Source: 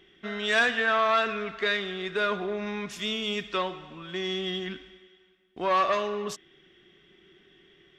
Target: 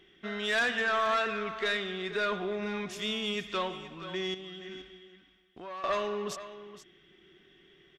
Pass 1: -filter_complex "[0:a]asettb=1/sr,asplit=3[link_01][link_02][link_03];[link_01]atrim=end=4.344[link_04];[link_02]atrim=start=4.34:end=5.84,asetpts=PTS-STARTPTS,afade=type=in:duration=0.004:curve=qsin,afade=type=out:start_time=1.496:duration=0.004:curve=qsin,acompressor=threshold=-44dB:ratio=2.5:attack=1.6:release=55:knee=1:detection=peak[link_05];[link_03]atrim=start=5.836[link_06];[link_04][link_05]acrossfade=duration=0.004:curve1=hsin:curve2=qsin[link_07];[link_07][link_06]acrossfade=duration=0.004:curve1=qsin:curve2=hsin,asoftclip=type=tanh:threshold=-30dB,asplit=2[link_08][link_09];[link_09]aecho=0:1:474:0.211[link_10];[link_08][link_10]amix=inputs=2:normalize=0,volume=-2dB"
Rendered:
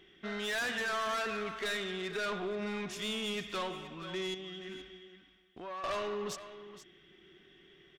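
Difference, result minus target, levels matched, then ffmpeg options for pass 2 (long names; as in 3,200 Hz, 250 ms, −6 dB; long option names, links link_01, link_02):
soft clipping: distortion +9 dB
-filter_complex "[0:a]asettb=1/sr,asplit=3[link_01][link_02][link_03];[link_01]atrim=end=4.344[link_04];[link_02]atrim=start=4.34:end=5.84,asetpts=PTS-STARTPTS,afade=type=in:duration=0.004:curve=qsin,afade=type=out:start_time=1.496:duration=0.004:curve=qsin,acompressor=threshold=-44dB:ratio=2.5:attack=1.6:release=55:knee=1:detection=peak[link_05];[link_03]atrim=start=5.836[link_06];[link_04][link_05]acrossfade=duration=0.004:curve1=hsin:curve2=qsin[link_07];[link_07][link_06]acrossfade=duration=0.004:curve1=qsin:curve2=hsin,asoftclip=type=tanh:threshold=-20dB,asplit=2[link_08][link_09];[link_09]aecho=0:1:474:0.211[link_10];[link_08][link_10]amix=inputs=2:normalize=0,volume=-2dB"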